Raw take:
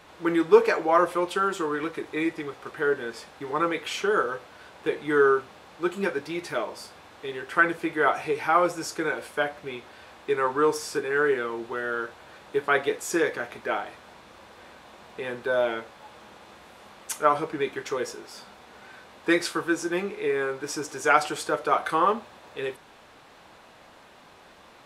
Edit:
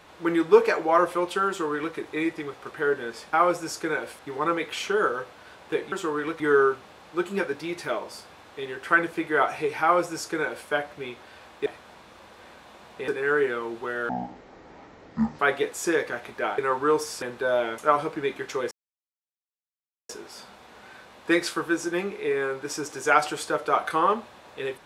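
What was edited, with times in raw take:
1.48–1.96 s: copy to 5.06 s
8.48–9.34 s: copy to 3.33 s
10.32–10.96 s: swap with 13.85–15.27 s
11.97–12.66 s: speed 53%
15.83–17.15 s: delete
18.08 s: insert silence 1.38 s

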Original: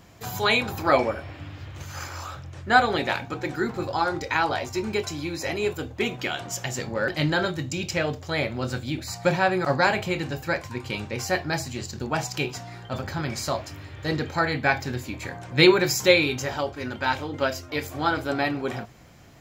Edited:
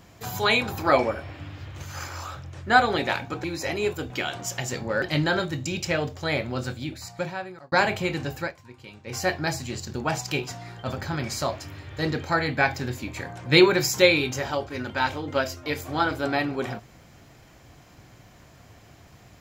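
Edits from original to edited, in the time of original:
3.44–5.24 s: delete
5.90–6.16 s: delete
8.51–9.78 s: fade out
10.45–11.23 s: dip -14 dB, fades 0.13 s

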